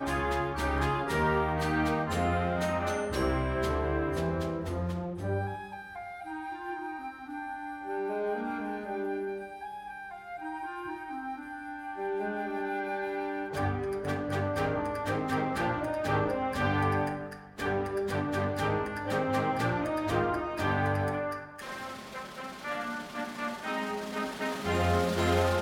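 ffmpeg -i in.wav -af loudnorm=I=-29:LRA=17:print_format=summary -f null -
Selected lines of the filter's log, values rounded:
Input Integrated:    -31.8 LUFS
Input True Peak:     -14.0 dBTP
Input LRA:             6.9 LU
Input Threshold:     -41.9 LUFS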